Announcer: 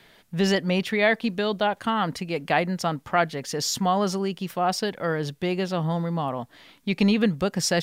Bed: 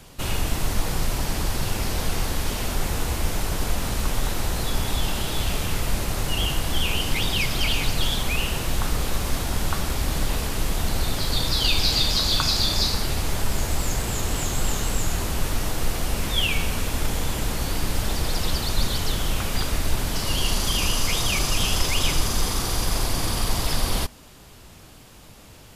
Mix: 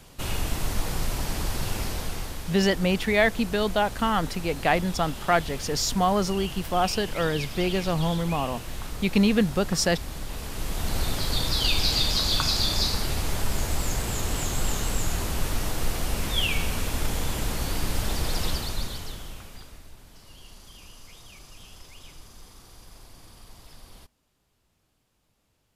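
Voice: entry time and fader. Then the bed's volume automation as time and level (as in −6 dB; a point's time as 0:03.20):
2.15 s, 0.0 dB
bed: 0:01.80 −3.5 dB
0:02.47 −11 dB
0:10.25 −11 dB
0:10.98 −2.5 dB
0:18.46 −2.5 dB
0:19.94 −25 dB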